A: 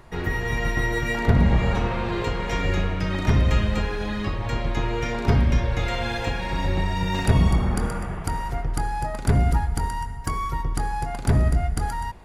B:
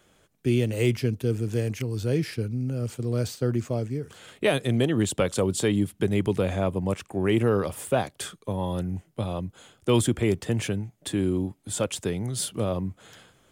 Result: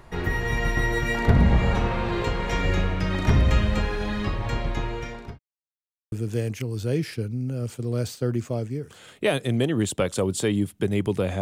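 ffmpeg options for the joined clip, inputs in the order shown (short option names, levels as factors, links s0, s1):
-filter_complex "[0:a]apad=whole_dur=11.41,atrim=end=11.41,asplit=2[s0][s1];[s0]atrim=end=5.39,asetpts=PTS-STARTPTS,afade=t=out:st=4.19:d=1.2:c=qsin[s2];[s1]atrim=start=5.39:end=6.12,asetpts=PTS-STARTPTS,volume=0[s3];[1:a]atrim=start=1.32:end=6.61,asetpts=PTS-STARTPTS,afade=t=in:d=0.004:c=hsin[s4];[s2][s3][s4]concat=n=3:v=0:a=1"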